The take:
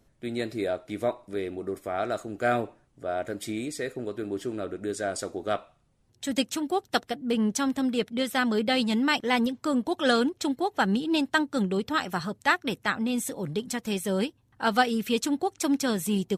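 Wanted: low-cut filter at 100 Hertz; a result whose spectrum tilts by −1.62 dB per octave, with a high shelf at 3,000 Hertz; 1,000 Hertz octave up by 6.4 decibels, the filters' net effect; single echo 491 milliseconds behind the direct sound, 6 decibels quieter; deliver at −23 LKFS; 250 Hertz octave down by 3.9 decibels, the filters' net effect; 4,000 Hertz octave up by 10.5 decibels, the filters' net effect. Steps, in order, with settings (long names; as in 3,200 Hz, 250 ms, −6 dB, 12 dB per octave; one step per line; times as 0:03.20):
high-pass filter 100 Hz
parametric band 250 Hz −5 dB
parametric band 1,000 Hz +8 dB
high-shelf EQ 3,000 Hz +8.5 dB
parametric band 4,000 Hz +6.5 dB
single-tap delay 491 ms −6 dB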